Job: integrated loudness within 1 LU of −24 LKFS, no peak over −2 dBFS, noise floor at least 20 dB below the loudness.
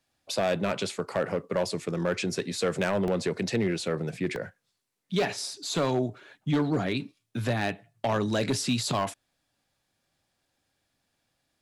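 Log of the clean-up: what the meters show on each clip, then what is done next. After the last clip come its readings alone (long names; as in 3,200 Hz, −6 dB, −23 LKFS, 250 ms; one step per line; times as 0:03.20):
share of clipped samples 1.1%; peaks flattened at −19.5 dBFS; number of dropouts 2; longest dropout 1.2 ms; integrated loudness −29.5 LKFS; sample peak −19.5 dBFS; target loudness −24.0 LKFS
→ clipped peaks rebuilt −19.5 dBFS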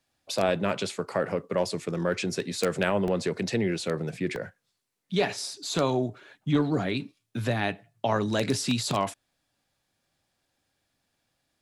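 share of clipped samples 0.0%; number of dropouts 2; longest dropout 1.2 ms
→ repair the gap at 0:03.08/0:04.36, 1.2 ms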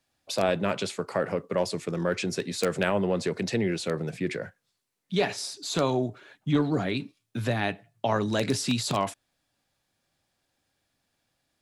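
number of dropouts 0; integrated loudness −28.5 LKFS; sample peak −10.5 dBFS; target loudness −24.0 LKFS
→ level +4.5 dB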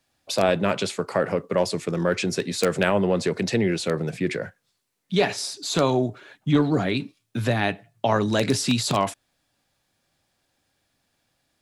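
integrated loudness −24.0 LKFS; sample peak −6.0 dBFS; background noise floor −73 dBFS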